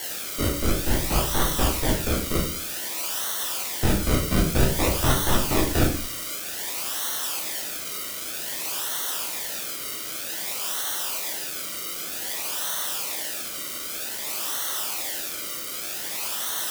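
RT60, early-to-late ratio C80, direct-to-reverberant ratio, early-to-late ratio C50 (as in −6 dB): 0.50 s, 11.0 dB, −2.5 dB, 7.0 dB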